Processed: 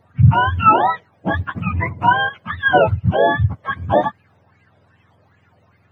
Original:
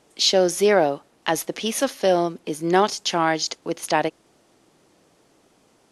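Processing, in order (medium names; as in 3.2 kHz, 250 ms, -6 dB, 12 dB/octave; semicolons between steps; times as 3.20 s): spectrum inverted on a logarithmic axis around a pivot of 740 Hz; sweeping bell 2.5 Hz 540–2500 Hz +11 dB; trim +1 dB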